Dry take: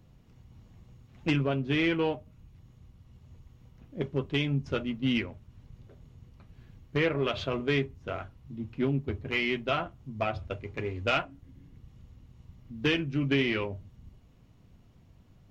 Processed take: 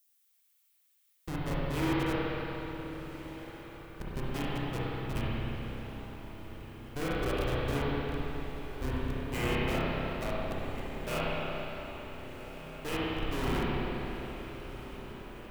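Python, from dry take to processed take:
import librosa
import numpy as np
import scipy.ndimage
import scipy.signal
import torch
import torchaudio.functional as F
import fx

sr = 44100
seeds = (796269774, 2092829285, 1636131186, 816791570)

p1 = scipy.signal.sosfilt(scipy.signal.butter(2, 5900.0, 'lowpass', fs=sr, output='sos'), x)
p2 = fx.hum_notches(p1, sr, base_hz=60, count=8)
p3 = fx.spec_gate(p2, sr, threshold_db=-20, keep='strong')
p4 = fx.graphic_eq(p3, sr, hz=(250, 500, 1000, 4000), db=(-5, 5, -4, 11))
p5 = fx.schmitt(p4, sr, flips_db=-24.5)
p6 = fx.dmg_noise_colour(p5, sr, seeds[0], colour='violet', level_db=-67.0)
p7 = 10.0 ** (-29.5 / 20.0) * (np.abs((p6 / 10.0 ** (-29.5 / 20.0) + 3.0) % 4.0 - 2.0) - 1.0)
p8 = p7 + fx.echo_diffused(p7, sr, ms=1439, feedback_pct=64, wet_db=-13.0, dry=0)
p9 = fx.rev_spring(p8, sr, rt60_s=3.7, pass_ms=(31, 56), chirp_ms=45, drr_db=-8.5)
y = F.gain(torch.from_numpy(p9), -3.0).numpy()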